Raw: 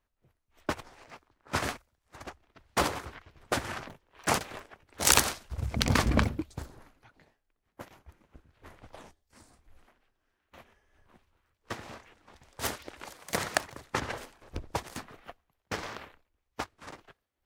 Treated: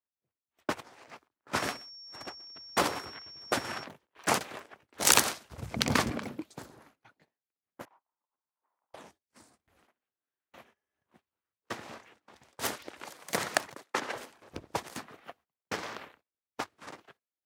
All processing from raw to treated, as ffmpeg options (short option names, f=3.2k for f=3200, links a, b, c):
-filter_complex "[0:a]asettb=1/sr,asplit=3[a][b][c];[a]atrim=end=1.554[d];[b]atrim=start=1.55:end=3.84,asetpts=PTS-STARTPTS,afade=t=in:d=0.004:c=qsin,afade=t=out:st=2.286:d=0.004:c=qsin,aeval=exprs='val(0)+0.00562*sin(2*PI*5500*n/s)':c=same,aecho=1:1:125:0.0708,atrim=end_sample=100989[e];[c]atrim=start=3.836[f];[d][e]acrossfade=d=0.004:c1=hsin:c2=qsin[g];[g][f]acrossfade=d=0.004:c1=qsin:c2=hsin,asettb=1/sr,asplit=3[h][i][j];[h]atrim=end=6.104[k];[i]atrim=start=6.1:end=6.63,asetpts=PTS-STARTPTS,afade=t=in:d=0.004:c=qsin,afade=t=out:st=0.526:d=0.004:c=qsin,highpass=160,acompressor=threshold=-30dB:ratio=12:attack=3.2:release=140:knee=1:detection=peak[l];[j]atrim=start=6.626[m];[k][l]acrossfade=d=0.004:c1=hsin:c2=qsin[n];[n][m]acrossfade=d=0.004:c1=qsin:c2=hsin,asettb=1/sr,asplit=3[o][p][q];[o]atrim=end=7.854[r];[p]atrim=start=7.85:end=8.94,asetpts=PTS-STARTPTS,afade=t=in:d=0.004:c=qsin,afade=t=out:st=1.086:d=0.004:c=qsin,acompressor=threshold=-50dB:ratio=6:attack=3.2:release=140:knee=1:detection=peak,bandpass=f=960:t=q:w=3.9[s];[q]atrim=start=8.936[t];[r][s]acrossfade=d=0.004:c1=hsin:c2=qsin[u];[u][t]acrossfade=d=0.004:c1=qsin:c2=hsin,asettb=1/sr,asplit=3[v][w][x];[v]atrim=end=13.744[y];[w]atrim=start=13.74:end=14.15,asetpts=PTS-STARTPTS,afade=t=in:d=0.004:c=qsin,afade=t=out:st=0.406:d=0.004:c=qsin,highpass=260,agate=range=-12dB:threshold=-54dB:ratio=16:release=100:detection=peak[z];[x]atrim=start=14.146[aa];[y][z]acrossfade=d=0.004:c1=hsin:c2=qsin[ab];[ab][aa]acrossfade=d=0.004:c1=qsin:c2=hsin,agate=range=-18dB:threshold=-59dB:ratio=16:detection=peak,highpass=150"